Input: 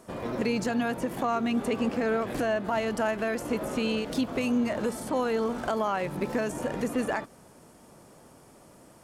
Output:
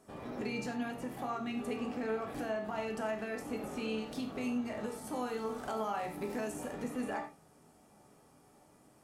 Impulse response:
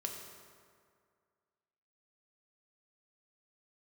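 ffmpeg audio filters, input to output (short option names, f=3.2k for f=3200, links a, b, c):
-filter_complex "[0:a]asettb=1/sr,asplit=3[a][b][c];[a]atrim=end=5.044[d];[b]atrim=start=5.04:end=6.73,asetpts=PTS-STARTPTS,afade=t=in:d=0.004:c=qsin,afade=t=out:st=1.686:d=0.004:c=qsin,highshelf=f=6.1k:g=8[e];[c]atrim=start=6.726[f];[d][e]acrossfade=d=0.004:c1=hsin:c2=qsin[g];[g][f]acrossfade=d=0.004:c1=qsin:c2=hsin[h];[1:a]atrim=start_sample=2205,afade=t=out:st=0.27:d=0.01,atrim=end_sample=12348,asetrate=88200,aresample=44100[i];[h][i]afir=irnorm=-1:irlink=0,volume=-3dB"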